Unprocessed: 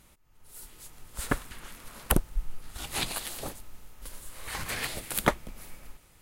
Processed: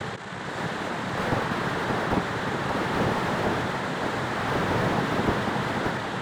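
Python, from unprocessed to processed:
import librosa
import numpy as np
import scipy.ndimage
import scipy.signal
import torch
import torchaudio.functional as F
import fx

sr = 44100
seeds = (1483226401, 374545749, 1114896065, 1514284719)

p1 = fx.bin_compress(x, sr, power=0.4)
p2 = fx.high_shelf_res(p1, sr, hz=2500.0, db=-12.0, q=1.5)
p3 = fx.quant_dither(p2, sr, seeds[0], bits=6, dither='none')
p4 = p2 + (p3 * 10.0 ** (-5.5 / 20.0))
p5 = fx.noise_vocoder(p4, sr, seeds[1], bands=6)
p6 = p5 + fx.echo_feedback(p5, sr, ms=577, feedback_pct=42, wet_db=-7.5, dry=0)
y = fx.slew_limit(p6, sr, full_power_hz=65.0)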